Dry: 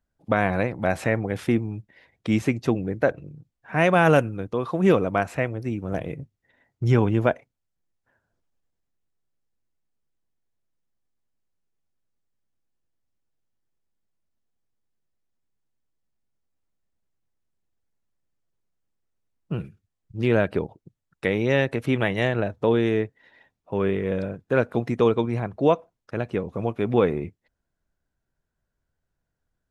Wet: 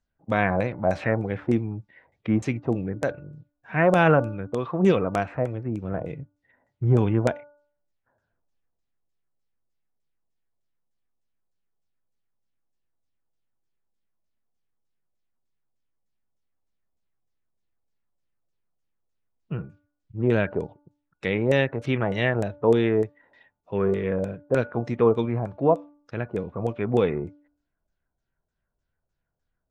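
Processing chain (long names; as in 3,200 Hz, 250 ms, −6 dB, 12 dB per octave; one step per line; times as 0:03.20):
auto-filter low-pass saw down 3.3 Hz 550–8,000 Hz
hum removal 292 Hz, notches 5
harmonic and percussive parts rebalanced percussive −6 dB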